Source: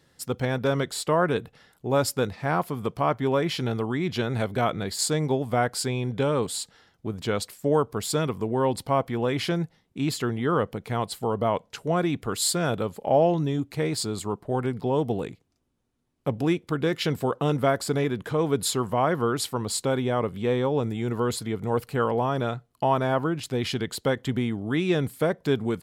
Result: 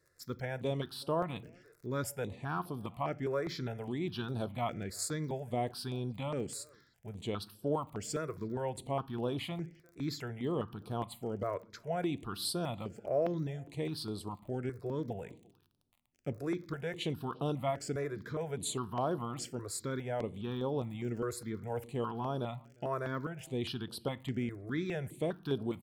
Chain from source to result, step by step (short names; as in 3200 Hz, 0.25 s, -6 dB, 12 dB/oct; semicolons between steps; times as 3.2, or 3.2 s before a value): crackle 37/s -38 dBFS; speakerphone echo 0.35 s, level -26 dB; on a send at -15 dB: reverb RT60 0.55 s, pre-delay 3 ms; on the sum: step phaser 4.9 Hz 840–7000 Hz; gain -8.5 dB